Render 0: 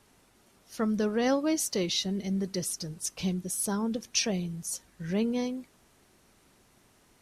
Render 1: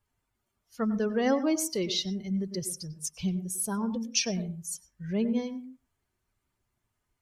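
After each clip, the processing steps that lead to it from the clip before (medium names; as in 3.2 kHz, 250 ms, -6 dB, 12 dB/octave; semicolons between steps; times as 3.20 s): expander on every frequency bin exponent 1.5; on a send at -12.5 dB: reverberation, pre-delay 95 ms; on the sum: trim +1.5 dB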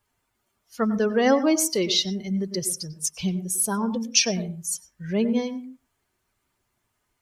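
bass shelf 180 Hz -9 dB; trim +8 dB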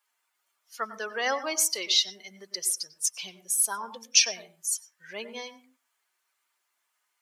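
high-pass 1 kHz 12 dB/octave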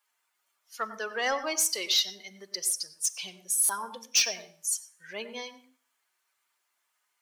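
saturation -16 dBFS, distortion -14 dB; Schroeder reverb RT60 0.55 s, combs from 29 ms, DRR 18 dB; buffer glitch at 3.64 s, samples 256, times 8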